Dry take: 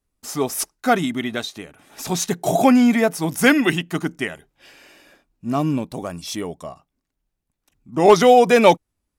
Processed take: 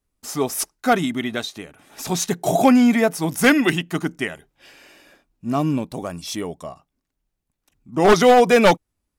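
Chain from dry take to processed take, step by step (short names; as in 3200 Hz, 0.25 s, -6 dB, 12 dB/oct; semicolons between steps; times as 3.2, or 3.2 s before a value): one-sided fold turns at -8 dBFS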